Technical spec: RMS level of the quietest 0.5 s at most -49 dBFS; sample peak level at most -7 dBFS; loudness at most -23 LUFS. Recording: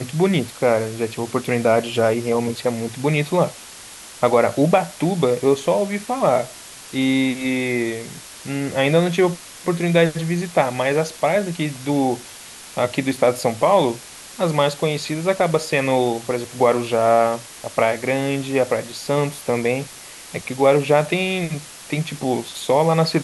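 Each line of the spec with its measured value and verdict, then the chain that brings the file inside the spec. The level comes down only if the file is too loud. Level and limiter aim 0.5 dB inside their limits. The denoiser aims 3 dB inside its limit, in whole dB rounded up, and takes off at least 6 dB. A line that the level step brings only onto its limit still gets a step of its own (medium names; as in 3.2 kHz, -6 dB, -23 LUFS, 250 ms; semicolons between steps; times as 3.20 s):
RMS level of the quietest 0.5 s -39 dBFS: fail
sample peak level -2.5 dBFS: fail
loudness -20.0 LUFS: fail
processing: noise reduction 10 dB, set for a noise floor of -39 dBFS; trim -3.5 dB; peak limiter -7.5 dBFS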